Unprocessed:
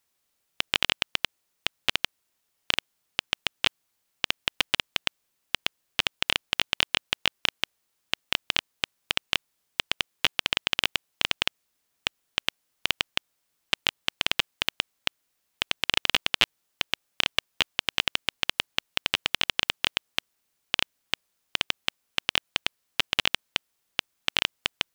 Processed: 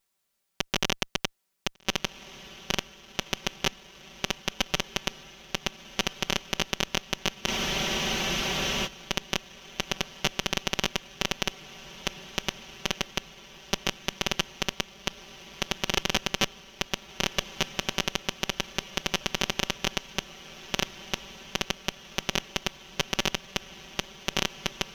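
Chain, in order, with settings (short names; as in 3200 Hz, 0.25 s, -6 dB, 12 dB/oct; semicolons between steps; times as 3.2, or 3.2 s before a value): minimum comb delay 5.2 ms; diffused feedback echo 1.557 s, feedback 53%, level -15 dB; spectral freeze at 7.5, 1.37 s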